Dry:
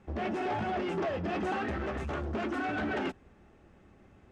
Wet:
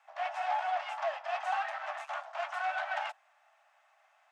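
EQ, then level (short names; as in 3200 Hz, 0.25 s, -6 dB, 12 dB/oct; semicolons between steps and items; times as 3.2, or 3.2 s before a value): steep high-pass 620 Hz 96 dB/oct; dynamic EQ 850 Hz, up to +4 dB, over -47 dBFS, Q 2.2; 0.0 dB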